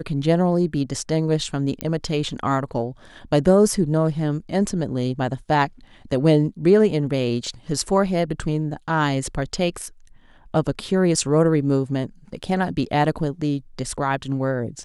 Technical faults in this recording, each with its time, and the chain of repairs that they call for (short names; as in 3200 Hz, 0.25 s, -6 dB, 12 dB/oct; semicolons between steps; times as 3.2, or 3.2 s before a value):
1.81 pop -10 dBFS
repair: de-click